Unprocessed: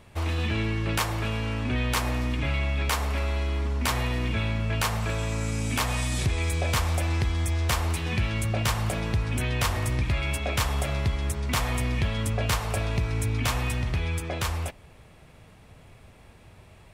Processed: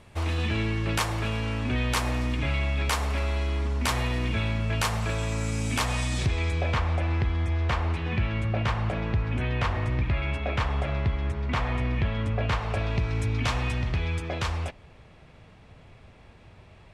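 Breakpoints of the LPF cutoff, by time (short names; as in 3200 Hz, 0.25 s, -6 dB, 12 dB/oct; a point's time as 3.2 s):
5.73 s 11000 Hz
6.26 s 6200 Hz
6.79 s 2600 Hz
12.42 s 2600 Hz
13.15 s 5300 Hz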